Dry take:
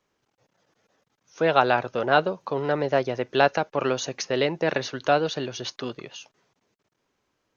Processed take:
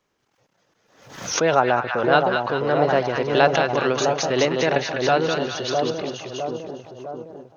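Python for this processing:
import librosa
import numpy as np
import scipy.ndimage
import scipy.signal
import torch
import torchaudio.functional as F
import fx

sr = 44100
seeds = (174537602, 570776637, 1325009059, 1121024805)

y = fx.moving_average(x, sr, points=13, at=(1.54, 1.98), fade=0.02)
y = fx.echo_split(y, sr, split_hz=1000.0, low_ms=658, high_ms=202, feedback_pct=52, wet_db=-4)
y = fx.pre_swell(y, sr, db_per_s=80.0)
y = y * librosa.db_to_amplitude(2.0)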